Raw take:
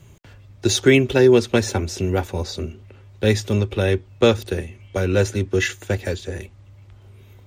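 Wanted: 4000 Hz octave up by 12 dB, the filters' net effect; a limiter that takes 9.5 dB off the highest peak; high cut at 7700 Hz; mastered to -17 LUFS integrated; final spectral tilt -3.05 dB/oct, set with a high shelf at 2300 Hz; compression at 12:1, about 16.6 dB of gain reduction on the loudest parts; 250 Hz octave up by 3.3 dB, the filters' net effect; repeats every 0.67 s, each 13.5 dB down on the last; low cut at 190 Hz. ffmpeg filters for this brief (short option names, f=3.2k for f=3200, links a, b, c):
-af "highpass=190,lowpass=7.7k,equalizer=f=250:t=o:g=5.5,highshelf=f=2.3k:g=8.5,equalizer=f=4k:t=o:g=7,acompressor=threshold=-23dB:ratio=12,alimiter=limit=-19dB:level=0:latency=1,aecho=1:1:670|1340:0.211|0.0444,volume=13dB"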